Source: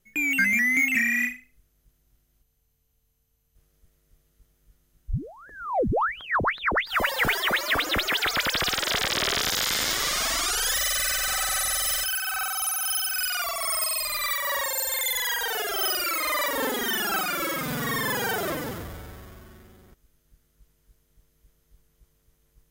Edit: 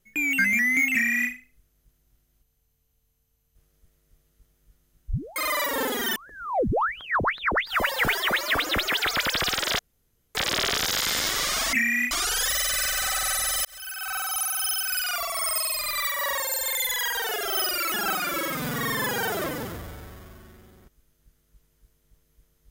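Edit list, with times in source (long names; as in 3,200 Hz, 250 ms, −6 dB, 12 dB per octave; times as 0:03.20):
0:00.93–0:01.31: duplicate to 0:10.37
0:08.99: splice in room tone 0.56 s
0:11.91–0:12.50: fade in
0:16.18–0:16.98: move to 0:05.36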